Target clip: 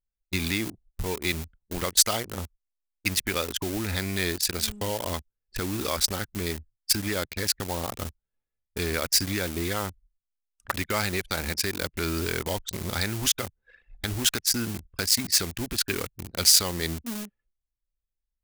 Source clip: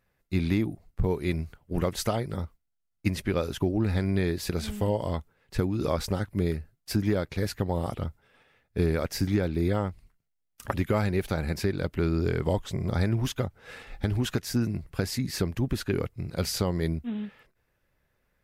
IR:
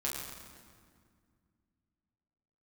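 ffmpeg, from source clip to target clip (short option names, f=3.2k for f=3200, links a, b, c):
-filter_complex "[0:a]lowpass=9.8k,anlmdn=2.51,equalizer=f=140:t=o:w=0.29:g=-13,asplit=2[a][b];[b]aeval=exprs='val(0)*gte(abs(val(0)),0.0251)':c=same,volume=-4dB[c];[a][c]amix=inputs=2:normalize=0,crystalizer=i=9:c=0,acrossover=split=910[d][e];[d]alimiter=limit=-18dB:level=0:latency=1[f];[f][e]amix=inputs=2:normalize=0,volume=-5.5dB"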